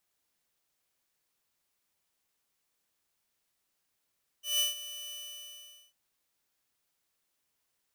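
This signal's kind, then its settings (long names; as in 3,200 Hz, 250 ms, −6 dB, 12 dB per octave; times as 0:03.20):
note with an ADSR envelope saw 2,980 Hz, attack 166 ms, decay 145 ms, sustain −15.5 dB, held 0.68 s, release 820 ms −22 dBFS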